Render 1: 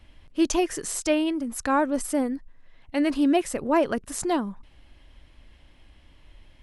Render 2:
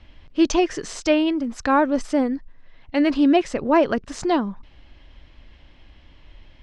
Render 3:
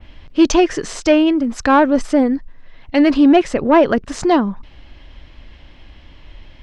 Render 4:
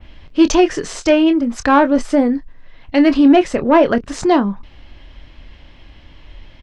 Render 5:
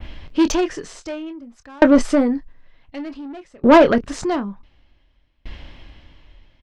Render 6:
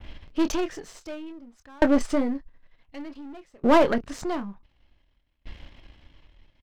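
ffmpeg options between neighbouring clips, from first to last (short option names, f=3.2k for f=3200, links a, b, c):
-af "lowpass=f=5.8k:w=0.5412,lowpass=f=5.8k:w=1.3066,volume=4.5dB"
-af "adynamicequalizer=threshold=0.00631:dfrequency=5600:dqfactor=0.72:tfrequency=5600:tqfactor=0.72:attack=5:release=100:ratio=0.375:range=2.5:mode=cutabove:tftype=bell,acontrast=90"
-filter_complex "[0:a]asplit=2[a][b];[b]adelay=25,volume=-11dB[c];[a][c]amix=inputs=2:normalize=0"
-af "acontrast=79,aeval=exprs='val(0)*pow(10,-34*if(lt(mod(0.55*n/s,1),2*abs(0.55)/1000),1-mod(0.55*n/s,1)/(2*abs(0.55)/1000),(mod(0.55*n/s,1)-2*abs(0.55)/1000)/(1-2*abs(0.55)/1000))/20)':c=same"
-af "aeval=exprs='if(lt(val(0),0),0.447*val(0),val(0))':c=same,volume=-5dB"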